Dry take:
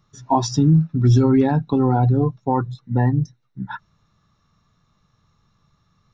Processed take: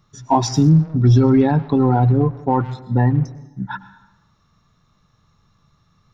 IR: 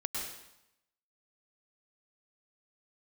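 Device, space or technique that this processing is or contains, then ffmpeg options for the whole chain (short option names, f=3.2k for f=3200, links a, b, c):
saturated reverb return: -filter_complex "[0:a]asplit=2[a][b];[1:a]atrim=start_sample=2205[c];[b][c]afir=irnorm=-1:irlink=0,asoftclip=type=tanh:threshold=-21dB,volume=-13dB[d];[a][d]amix=inputs=2:normalize=0,asettb=1/sr,asplit=3[e][f][g];[e]atrim=end=0.694[h];[f]atrim=start=0.69:end=1.7,asetpts=PTS-STARTPTS,afade=t=in:d=0.004:c=qsin,afade=t=out:st=1.006:d=0.004:c=qsin,lowpass=f=5.6k:w=0.5412,lowpass=f=5.6k:w=1.3066[i];[g]atrim=start=1.696[j];[h][i]acrossfade=d=0.004:c1=hsin:c2=qsin[k];[k][j]acrossfade=d=0.004:c1=qsin:c2=hsin,volume=1.5dB"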